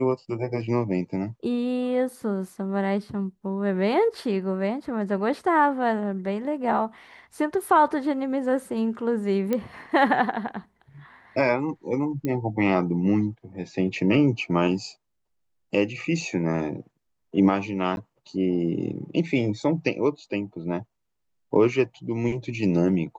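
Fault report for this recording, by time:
0:09.53: click −13 dBFS
0:12.25: click −16 dBFS
0:17.96–0:17.97: drop-out

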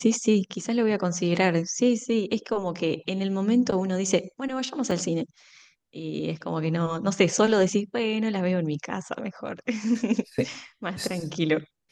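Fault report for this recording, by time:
0:04.91: drop-out 3.4 ms

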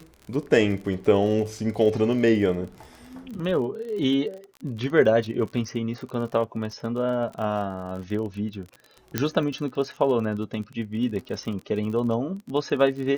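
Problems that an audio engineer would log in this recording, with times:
surface crackle 41 per second −33 dBFS
0:09.18: click −7 dBFS

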